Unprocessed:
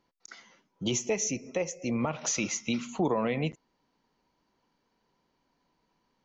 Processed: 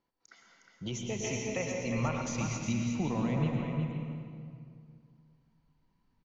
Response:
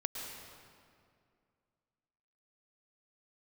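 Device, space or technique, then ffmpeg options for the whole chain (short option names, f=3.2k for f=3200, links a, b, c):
swimming-pool hall: -filter_complex "[1:a]atrim=start_sample=2205[a];[0:a][a]afir=irnorm=-1:irlink=0,highshelf=f=5.6k:g=-7,asettb=1/sr,asplit=3[b][c][d];[b]atrim=end=1.244[e];[c]atrim=start=1.24:end=2.22,asetpts=PTS-STARTPTS,afade=t=in:d=0.004:c=qsin,afade=t=out:st=0.976:d=0.004:c=qsin,equalizer=f=1.7k:w=0.36:g=8.5[f];[d]atrim=start=2.216[g];[e][f]acrossfade=d=0.004:c1=hsin:c2=qsin[h];[h][g]acrossfade=d=0.004:c1=qsin:c2=hsin,aecho=1:1:361:0.473,asubboost=boost=7.5:cutoff=160,volume=-7dB"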